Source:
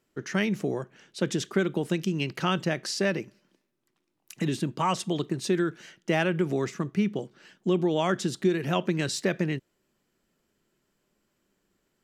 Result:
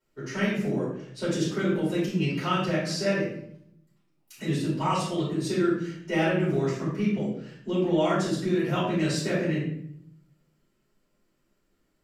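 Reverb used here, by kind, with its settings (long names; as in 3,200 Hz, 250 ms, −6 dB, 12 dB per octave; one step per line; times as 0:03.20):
rectangular room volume 140 cubic metres, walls mixed, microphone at 4.7 metres
level −14 dB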